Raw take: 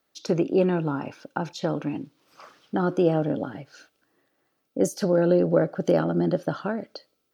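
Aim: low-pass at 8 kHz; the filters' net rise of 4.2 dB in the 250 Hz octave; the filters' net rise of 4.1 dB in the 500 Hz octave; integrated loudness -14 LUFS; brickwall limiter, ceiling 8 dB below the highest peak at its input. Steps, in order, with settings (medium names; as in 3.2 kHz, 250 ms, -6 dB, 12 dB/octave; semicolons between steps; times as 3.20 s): low-pass 8 kHz; peaking EQ 250 Hz +5 dB; peaking EQ 500 Hz +3.5 dB; trim +9.5 dB; peak limiter -2 dBFS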